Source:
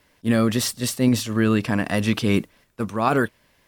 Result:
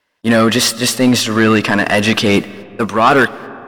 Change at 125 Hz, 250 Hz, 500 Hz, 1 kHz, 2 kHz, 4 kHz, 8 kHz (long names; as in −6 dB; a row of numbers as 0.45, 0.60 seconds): +3.0, +7.0, +10.0, +11.5, +13.0, +13.0, +10.0 decibels